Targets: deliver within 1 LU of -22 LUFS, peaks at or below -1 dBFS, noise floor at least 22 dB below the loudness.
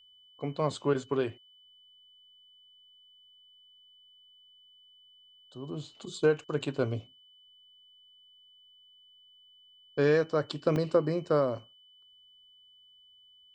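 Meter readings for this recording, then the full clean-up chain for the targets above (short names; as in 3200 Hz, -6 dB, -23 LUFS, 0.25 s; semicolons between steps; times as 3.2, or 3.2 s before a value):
dropouts 1; longest dropout 2.9 ms; steady tone 3000 Hz; tone level -57 dBFS; loudness -30.5 LUFS; peak -12.5 dBFS; loudness target -22.0 LUFS
-> interpolate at 10.76, 2.9 ms; notch 3000 Hz, Q 30; gain +8.5 dB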